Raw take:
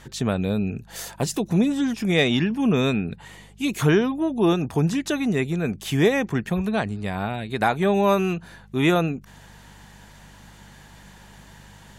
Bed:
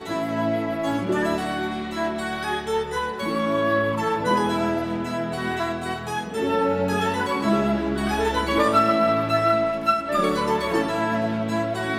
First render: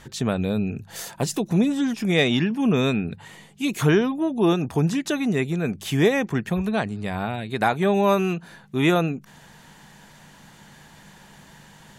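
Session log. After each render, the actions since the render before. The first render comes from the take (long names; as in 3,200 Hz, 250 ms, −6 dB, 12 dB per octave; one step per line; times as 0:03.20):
hum removal 50 Hz, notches 2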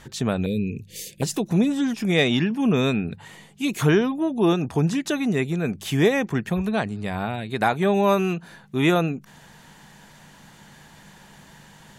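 0:00.46–0:01.22: elliptic band-stop filter 490–2,200 Hz
0:04.52–0:04.92: low-pass filter 11,000 Hz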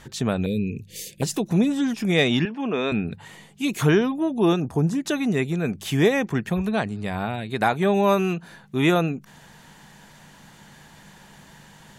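0:02.45–0:02.92: band-pass filter 350–3,500 Hz
0:04.60–0:05.05: parametric band 2,900 Hz −11.5 dB 1.9 octaves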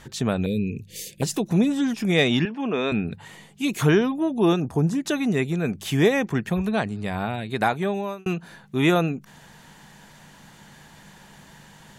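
0:07.60–0:08.26: fade out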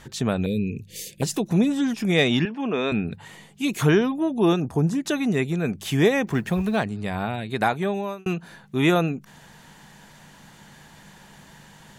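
0:06.27–0:06.84: mu-law and A-law mismatch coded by mu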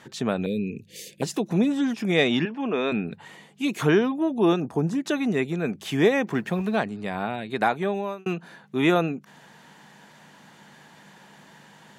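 high-pass filter 190 Hz 12 dB per octave
high-shelf EQ 5,500 Hz −8.5 dB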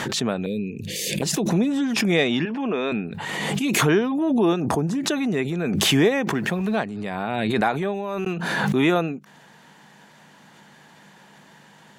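background raised ahead of every attack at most 23 dB per second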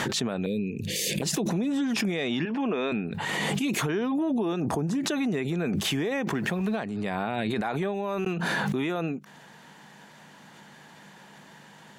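brickwall limiter −14.5 dBFS, peak gain reduction 11.5 dB
downward compressor, threshold −24 dBFS, peak gain reduction 6.5 dB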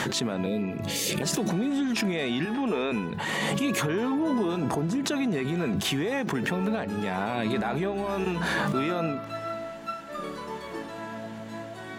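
mix in bed −14 dB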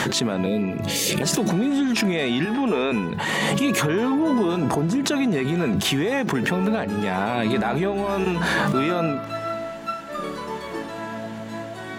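level +5.5 dB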